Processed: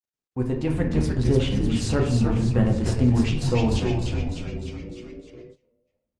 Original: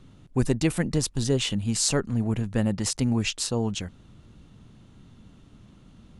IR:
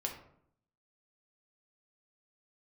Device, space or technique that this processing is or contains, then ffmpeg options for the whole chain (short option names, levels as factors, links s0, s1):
speakerphone in a meeting room: -filter_complex "[0:a]aemphasis=mode=reproduction:type=75fm,agate=range=0.0355:threshold=0.0126:ratio=16:detection=peak,asettb=1/sr,asplit=3[s0][s1][s2];[s0]atrim=end=1.304[s3];[s1]atrim=start=1.3:end=1.82,asetpts=PTS-STARTPTS,afade=t=in:d=0.004:c=qsin,afade=t=out:st=0.516:d=0.004:c=qsin,highshelf=f=6700:g=-3.5[s4];[s2]atrim=start=1.816[s5];[s3][s4]acrossfade=d=0.004:c1=hsin:c2=qsin[s6];[s6][s5]acrossfade=d=0.004:c1=qsin:c2=hsin,asplit=8[s7][s8][s9][s10][s11][s12][s13][s14];[s8]adelay=302,afreqshift=-100,volume=0.562[s15];[s9]adelay=604,afreqshift=-200,volume=0.292[s16];[s10]adelay=906,afreqshift=-300,volume=0.151[s17];[s11]adelay=1208,afreqshift=-400,volume=0.0794[s18];[s12]adelay=1510,afreqshift=-500,volume=0.0412[s19];[s13]adelay=1812,afreqshift=-600,volume=0.0214[s20];[s14]adelay=2114,afreqshift=-700,volume=0.0111[s21];[s7][s15][s16][s17][s18][s19][s20][s21]amix=inputs=8:normalize=0[s22];[1:a]atrim=start_sample=2205[s23];[s22][s23]afir=irnorm=-1:irlink=0,dynaudnorm=f=110:g=13:m=6.31,agate=range=0.126:threshold=0.0112:ratio=16:detection=peak,volume=0.473" -ar 48000 -c:a libopus -b:a 24k